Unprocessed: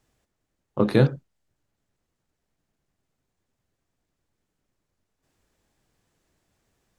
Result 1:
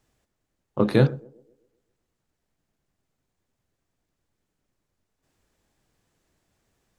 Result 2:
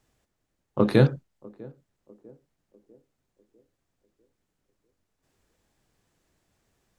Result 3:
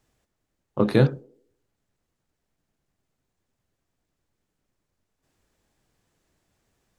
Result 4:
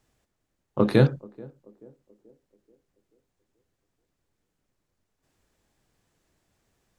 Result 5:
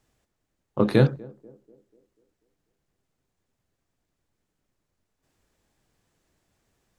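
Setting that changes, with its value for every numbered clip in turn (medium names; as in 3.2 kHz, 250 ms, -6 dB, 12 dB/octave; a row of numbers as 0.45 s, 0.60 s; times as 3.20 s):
band-passed feedback delay, time: 129 ms, 648 ms, 81 ms, 433 ms, 244 ms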